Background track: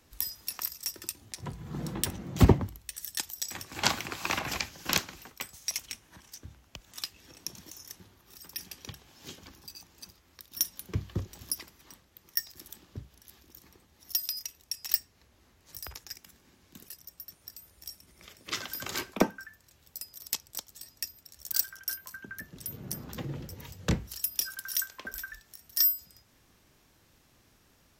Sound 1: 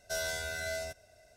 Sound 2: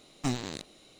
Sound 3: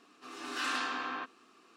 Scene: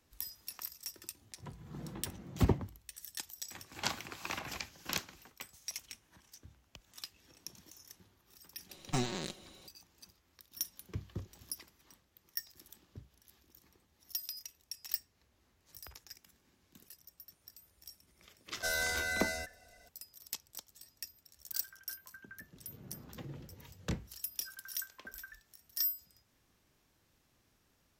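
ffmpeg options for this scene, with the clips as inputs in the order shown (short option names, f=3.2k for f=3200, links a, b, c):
-filter_complex "[0:a]volume=-9dB[a];[2:a]aecho=1:1:5.4:0.67[b];[1:a]aecho=1:1:4:0.9[c];[b]atrim=end=0.99,asetpts=PTS-STARTPTS,volume=-2.5dB,afade=t=in:d=0.004:c=hsin,afade=t=out:st=0.986:d=0.004:c=hsin,adelay=8690[d];[c]atrim=end=1.36,asetpts=PTS-STARTPTS,volume=-1dB,afade=t=in:d=0.004:c=hsin,afade=t=out:st=1.356:d=0.004:c=hsin,adelay=18530[e];[a][d][e]amix=inputs=3:normalize=0"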